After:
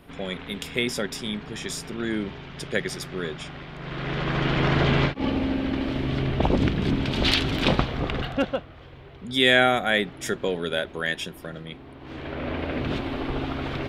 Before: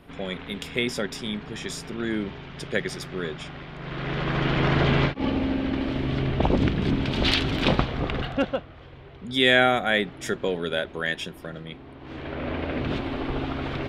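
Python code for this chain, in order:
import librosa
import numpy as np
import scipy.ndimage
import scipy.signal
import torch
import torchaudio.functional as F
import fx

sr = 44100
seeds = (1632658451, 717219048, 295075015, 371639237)

y = fx.high_shelf(x, sr, hz=7600.0, db=7.0)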